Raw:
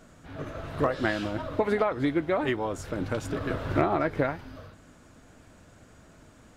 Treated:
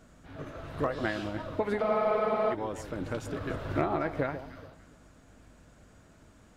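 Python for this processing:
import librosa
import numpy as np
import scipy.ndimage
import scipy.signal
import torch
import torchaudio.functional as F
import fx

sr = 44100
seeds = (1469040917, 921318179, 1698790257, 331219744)

y = fx.add_hum(x, sr, base_hz=50, snr_db=27)
y = fx.echo_alternate(y, sr, ms=144, hz=1100.0, feedback_pct=50, wet_db=-10.5)
y = fx.spec_freeze(y, sr, seeds[0], at_s=1.83, hold_s=0.68)
y = y * 10.0 ** (-4.5 / 20.0)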